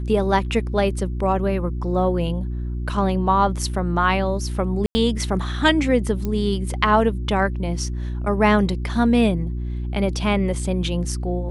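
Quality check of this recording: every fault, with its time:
mains hum 60 Hz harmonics 6 −26 dBFS
0:04.86–0:04.95: drop-out 90 ms
0:06.25: click −14 dBFS

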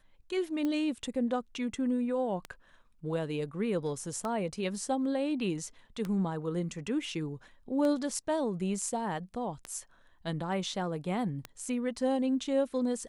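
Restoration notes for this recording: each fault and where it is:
scratch tick 33 1/3 rpm −21 dBFS

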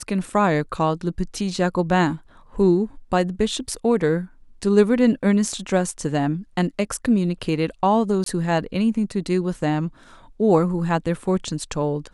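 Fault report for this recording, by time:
0:08.24–0:08.26: drop-out 23 ms

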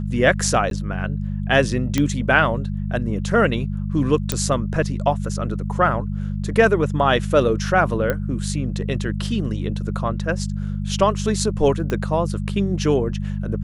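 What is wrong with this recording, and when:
mains hum 50 Hz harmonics 4 −25 dBFS
0:00.70–0:00.71: drop-out 12 ms
0:01.98: click −6 dBFS
0:04.32: click −5 dBFS
0:08.10: click −9 dBFS
0:11.90: click −12 dBFS

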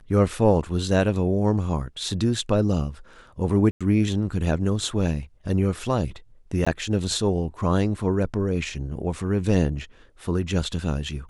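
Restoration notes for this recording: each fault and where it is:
0:03.71–0:03.81: drop-out 96 ms
0:06.65–0:06.67: drop-out 15 ms

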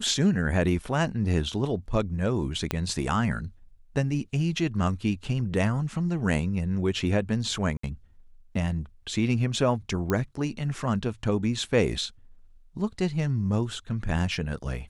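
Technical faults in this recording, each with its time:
0:02.71: click −11 dBFS
0:07.77–0:07.83: drop-out 64 ms
0:10.10: click −13 dBFS

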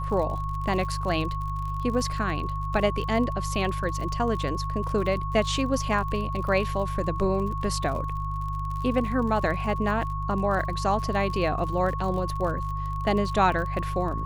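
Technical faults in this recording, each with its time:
surface crackle 44 per second −33 dBFS
mains hum 50 Hz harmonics 3 −31 dBFS
whistle 1,100 Hz −32 dBFS

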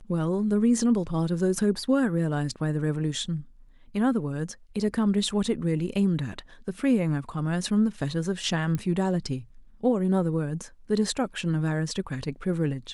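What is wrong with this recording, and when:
0:08.75: click −17 dBFS

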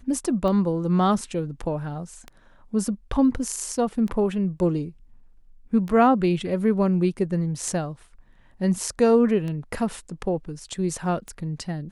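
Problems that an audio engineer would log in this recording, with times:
scratch tick 33 1/3 rpm −20 dBFS

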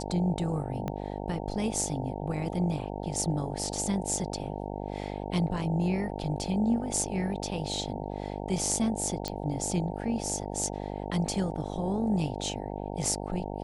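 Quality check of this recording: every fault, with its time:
mains buzz 50 Hz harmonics 18 −36 dBFS
0:00.88: click −20 dBFS
0:09.28: click −17 dBFS

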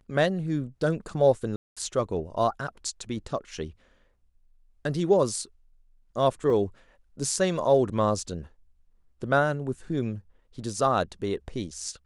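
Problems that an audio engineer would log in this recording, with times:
0:01.56–0:01.77: drop-out 206 ms
0:06.50: drop-out 2.4 ms

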